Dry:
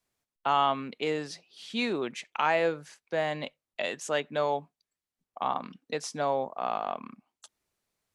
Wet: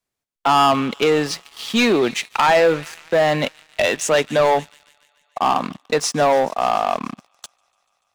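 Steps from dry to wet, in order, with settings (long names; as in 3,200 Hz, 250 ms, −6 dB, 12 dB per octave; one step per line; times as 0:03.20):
delay with a high-pass on its return 145 ms, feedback 83%, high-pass 1,900 Hz, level −19.5 dB
leveller curve on the samples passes 3
level +4.5 dB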